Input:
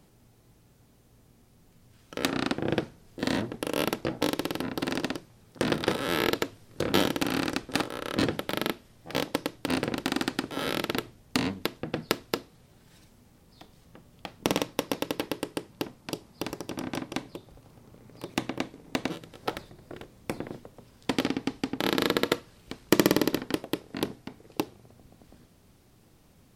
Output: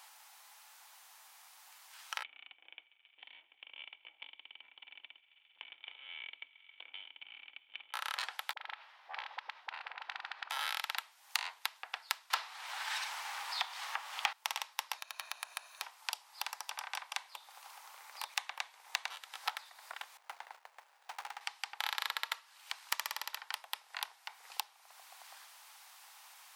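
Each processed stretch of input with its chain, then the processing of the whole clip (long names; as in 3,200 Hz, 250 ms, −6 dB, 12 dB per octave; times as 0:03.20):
0:02.23–0:07.94: formant resonators in series i + feedback echo with a high-pass in the loop 135 ms, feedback 85%, high-pass 490 Hz, level −23.5 dB
0:08.53–0:10.50: downward compressor, threshold −37 dBFS + high-frequency loss of the air 330 metres + all-pass dispersion highs, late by 40 ms, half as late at 420 Hz
0:12.30–0:14.33: high-shelf EQ 5,000 Hz −8 dB + mid-hump overdrive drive 29 dB, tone 4,600 Hz, clips at −6.5 dBFS
0:14.98–0:15.82: lower of the sound and its delayed copy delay 1.6 ms + EQ curve with evenly spaced ripples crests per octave 1.5, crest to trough 10 dB + downward compressor 4 to 1, threshold −40 dBFS
0:20.17–0:21.41: running median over 41 samples + hard clipping −28.5 dBFS
whole clip: downward compressor 3 to 1, threshold −46 dBFS; elliptic high-pass filter 840 Hz, stop band 80 dB; level +11 dB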